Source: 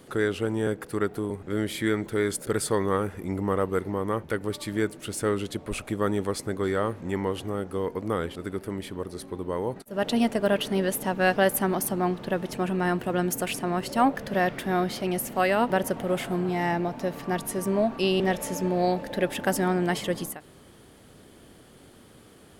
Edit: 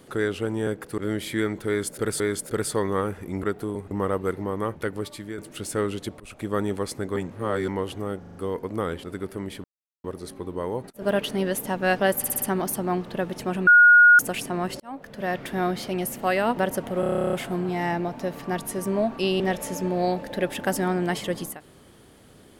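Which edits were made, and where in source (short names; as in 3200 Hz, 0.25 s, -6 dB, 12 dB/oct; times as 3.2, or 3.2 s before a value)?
0.98–1.46 move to 3.39
2.16–2.68 loop, 2 plays
4.43–4.86 fade out, to -11.5 dB
5.68–5.97 fade in, from -23 dB
6.64–7.16 reverse
7.67 stutter 0.04 s, 5 plays
8.96 insert silence 0.40 s
9.94–10.39 cut
11.55 stutter 0.06 s, 5 plays
12.8–13.32 bleep 1440 Hz -9.5 dBFS
13.93–14.65 fade in
16.13 stutter 0.03 s, 12 plays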